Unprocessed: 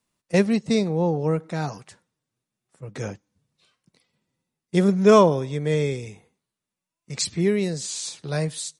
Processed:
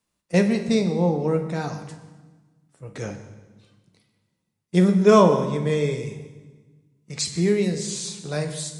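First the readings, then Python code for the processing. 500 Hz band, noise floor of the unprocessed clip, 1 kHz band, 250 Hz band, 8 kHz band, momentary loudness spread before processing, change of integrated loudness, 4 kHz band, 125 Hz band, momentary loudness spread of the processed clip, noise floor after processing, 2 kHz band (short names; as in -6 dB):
+0.5 dB, under -85 dBFS, +0.5 dB, +1.5 dB, 0.0 dB, 18 LU, +1.0 dB, 0.0 dB, +1.0 dB, 19 LU, -78 dBFS, 0.0 dB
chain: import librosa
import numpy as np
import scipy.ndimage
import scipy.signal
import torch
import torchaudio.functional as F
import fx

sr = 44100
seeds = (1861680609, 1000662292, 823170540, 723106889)

y = fx.rev_fdn(x, sr, rt60_s=1.3, lf_ratio=1.45, hf_ratio=0.9, size_ms=99.0, drr_db=5.5)
y = y * librosa.db_to_amplitude(-1.0)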